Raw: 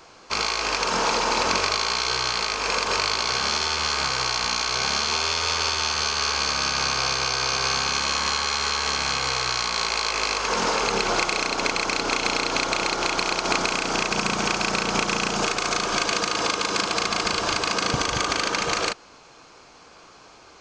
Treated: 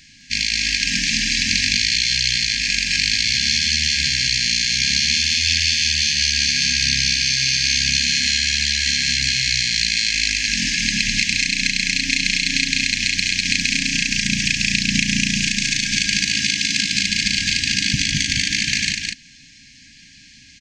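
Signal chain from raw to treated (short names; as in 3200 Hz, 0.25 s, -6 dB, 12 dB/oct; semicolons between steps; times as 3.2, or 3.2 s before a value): rattling part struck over -39 dBFS, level -24 dBFS; brick-wall FIR band-stop 290–1600 Hz; echo 0.207 s -3.5 dB; gain +5.5 dB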